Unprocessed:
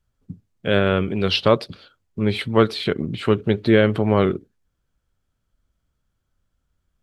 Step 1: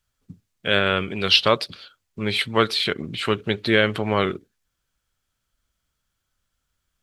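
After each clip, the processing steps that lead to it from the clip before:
tilt shelving filter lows −7 dB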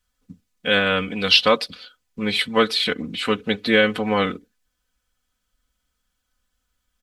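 comb filter 4 ms, depth 88%
level −1 dB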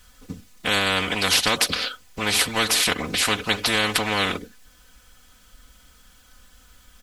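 every bin compressed towards the loudest bin 4 to 1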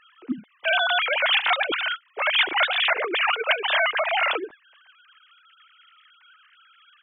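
three sine waves on the formant tracks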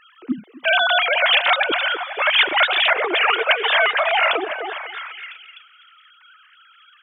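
echo through a band-pass that steps 251 ms, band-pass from 530 Hz, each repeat 0.7 octaves, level −6 dB
level +4.5 dB

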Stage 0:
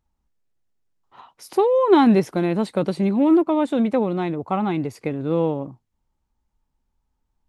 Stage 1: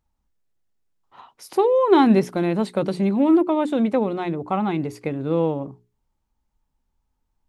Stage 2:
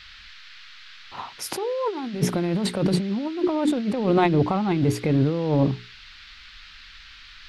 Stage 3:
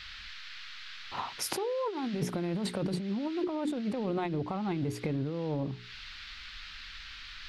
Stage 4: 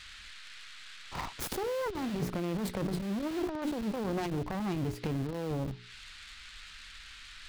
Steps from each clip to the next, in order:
mains-hum notches 60/120/180/240/300/360/420 Hz
low-shelf EQ 160 Hz +10.5 dB; compressor whose output falls as the input rises −26 dBFS, ratio −1; noise in a band 1,300–4,500 Hz −49 dBFS; level +2.5 dB
downward compressor 6 to 1, threshold −30 dBFS, peak gain reduction 15 dB
phase distortion by the signal itself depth 0.54 ms; in parallel at −3.5 dB: comparator with hysteresis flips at −32 dBFS; on the sum: level −3 dB

